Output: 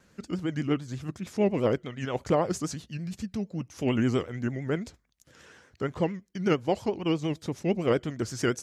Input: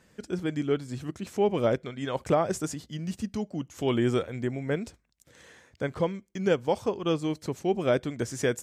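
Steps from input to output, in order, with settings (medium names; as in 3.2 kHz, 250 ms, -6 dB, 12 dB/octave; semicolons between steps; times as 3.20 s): formant shift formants -2 st; vibrato 8.7 Hz 94 cents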